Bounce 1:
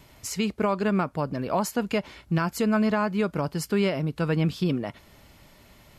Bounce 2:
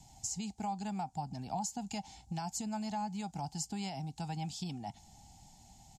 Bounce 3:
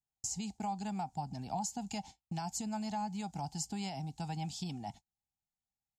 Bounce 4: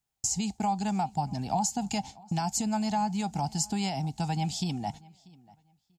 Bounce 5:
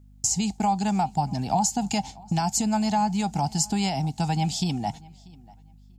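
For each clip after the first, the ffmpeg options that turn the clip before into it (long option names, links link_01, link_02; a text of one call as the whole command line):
ffmpeg -i in.wav -filter_complex "[0:a]firequalizer=gain_entry='entry(200,0);entry(380,-14);entry(550,-22);entry(780,12);entry(1100,-21);entry(3300,-6);entry(7100,11);entry(11000,-9)':delay=0.05:min_phase=1,acrossover=split=340|730[link_01][link_02][link_03];[link_01]acompressor=threshold=-37dB:ratio=4[link_04];[link_02]acompressor=threshold=-49dB:ratio=4[link_05];[link_03]acompressor=threshold=-33dB:ratio=4[link_06];[link_04][link_05][link_06]amix=inputs=3:normalize=0,volume=-4dB" out.wav
ffmpeg -i in.wav -af "agate=range=-42dB:threshold=-48dB:ratio=16:detection=peak" out.wav
ffmpeg -i in.wav -filter_complex "[0:a]asplit=2[link_01][link_02];[link_02]adelay=639,lowpass=frequency=4400:poles=1,volume=-23.5dB,asplit=2[link_03][link_04];[link_04]adelay=639,lowpass=frequency=4400:poles=1,volume=0.22[link_05];[link_01][link_03][link_05]amix=inputs=3:normalize=0,volume=9dB" out.wav
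ffmpeg -i in.wav -af "aeval=exprs='val(0)+0.00178*(sin(2*PI*50*n/s)+sin(2*PI*2*50*n/s)/2+sin(2*PI*3*50*n/s)/3+sin(2*PI*4*50*n/s)/4+sin(2*PI*5*50*n/s)/5)':channel_layout=same,volume=5dB" out.wav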